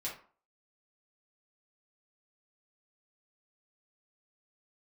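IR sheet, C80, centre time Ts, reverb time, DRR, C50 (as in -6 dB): 13.0 dB, 27 ms, 0.45 s, -6.0 dB, 6.5 dB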